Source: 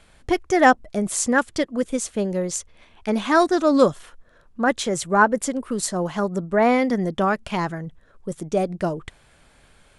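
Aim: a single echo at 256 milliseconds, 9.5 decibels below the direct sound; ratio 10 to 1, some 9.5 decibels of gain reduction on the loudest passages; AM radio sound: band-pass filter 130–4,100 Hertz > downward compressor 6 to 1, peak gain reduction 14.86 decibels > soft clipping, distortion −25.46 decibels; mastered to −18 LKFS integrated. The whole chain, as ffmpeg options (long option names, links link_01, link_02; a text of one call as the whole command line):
ffmpeg -i in.wav -af "acompressor=threshold=-19dB:ratio=10,highpass=130,lowpass=4100,aecho=1:1:256:0.335,acompressor=threshold=-34dB:ratio=6,asoftclip=threshold=-24.5dB,volume=20.5dB" out.wav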